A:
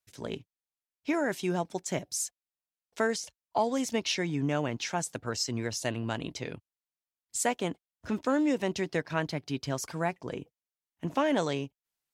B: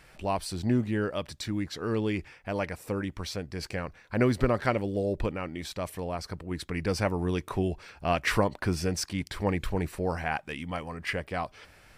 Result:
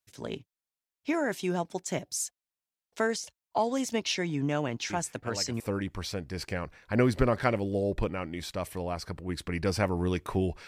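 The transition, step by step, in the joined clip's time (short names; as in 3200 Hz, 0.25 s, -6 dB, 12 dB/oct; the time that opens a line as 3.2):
A
4.9 add B from 2.12 s 0.70 s -9 dB
5.6 switch to B from 2.82 s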